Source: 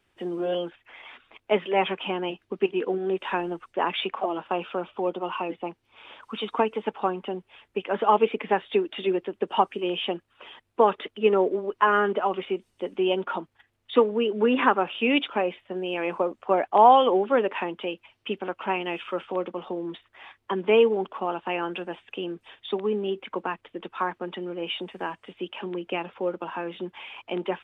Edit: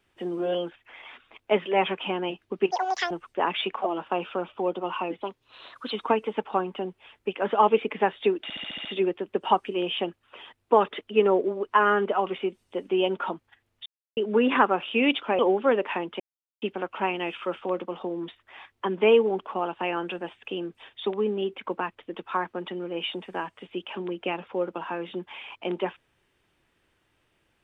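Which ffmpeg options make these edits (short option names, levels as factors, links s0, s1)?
-filter_complex "[0:a]asplit=16[s0][s1][s2][s3][s4][s5][s6][s7][s8][s9][s10][s11][s12][s13][s14][s15];[s0]atrim=end=2.714[s16];[s1]atrim=start=2.71:end=3.5,asetpts=PTS-STARTPTS,asetrate=87759,aresample=44100,atrim=end_sample=17507,asetpts=PTS-STARTPTS[s17];[s2]atrim=start=3.496:end=5.604[s18];[s3]atrim=start=5.6:end=6.4,asetpts=PTS-STARTPTS,asetrate=50274,aresample=44100,atrim=end_sample=30947,asetpts=PTS-STARTPTS[s19];[s4]atrim=start=6.396:end=8.992[s20];[s5]atrim=start=8.918:end=8.992[s21];[s6]atrim=start=8.918:end=8.992[s22];[s7]atrim=start=8.918:end=8.992[s23];[s8]atrim=start=8.918:end=8.992[s24];[s9]atrim=start=8.918:end=8.992[s25];[s10]atrim=start=8.918:end=13.93,asetpts=PTS-STARTPTS,afade=t=out:st=5.008:d=0.004:c=hsin[s26];[s11]atrim=start=13.93:end=14.24,asetpts=PTS-STARTPTS,volume=0[s27];[s12]atrim=start=14.24:end=15.462,asetpts=PTS-STARTPTS,afade=t=in:d=0.004:c=hsin[s28];[s13]atrim=start=17.048:end=17.86,asetpts=PTS-STARTPTS,afade=t=out:st=0.808:d=0.004:c=hsin[s29];[s14]atrim=start=17.86:end=18.28,asetpts=PTS-STARTPTS,volume=0[s30];[s15]atrim=start=18.28,asetpts=PTS-STARTPTS,afade=t=in:d=0.004:c=hsin[s31];[s16][s17]acrossfade=d=0.004:c1=hsin:c2=hsin[s32];[s32][s18]acrossfade=d=0.004:c1=hsin:c2=hsin[s33];[s33][s19]acrossfade=d=0.004:c1=hsin:c2=hsin[s34];[s34][s20]acrossfade=d=0.004:c1=hsin:c2=hsin[s35];[s35][s21]acrossfade=d=0.004:c1=hsin:c2=hsin[s36];[s36][s22]acrossfade=d=0.004:c1=hsin:c2=hsin[s37];[s37][s23]acrossfade=d=0.004:c1=hsin:c2=hsin[s38];[s38][s24]acrossfade=d=0.004:c1=hsin:c2=hsin[s39];[s39][s25]acrossfade=d=0.004:c1=hsin:c2=hsin[s40];[s26][s27][s28]concat=n=3:v=0:a=1[s41];[s40][s41]acrossfade=d=0.004:c1=hsin:c2=hsin[s42];[s29][s30][s31]concat=n=3:v=0:a=1[s43];[s42][s43]acrossfade=d=0.004:c1=hsin:c2=hsin"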